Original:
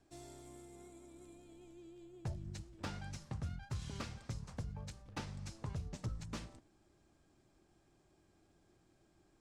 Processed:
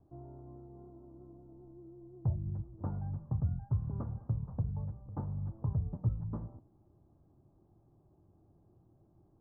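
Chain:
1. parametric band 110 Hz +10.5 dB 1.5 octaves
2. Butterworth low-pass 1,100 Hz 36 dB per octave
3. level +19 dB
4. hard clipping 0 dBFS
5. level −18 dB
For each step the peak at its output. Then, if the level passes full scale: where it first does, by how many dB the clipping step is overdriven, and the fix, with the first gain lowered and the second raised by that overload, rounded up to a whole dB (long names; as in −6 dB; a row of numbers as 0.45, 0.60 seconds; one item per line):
−23.0, −23.0, −4.0, −4.0, −22.0 dBFS
no step passes full scale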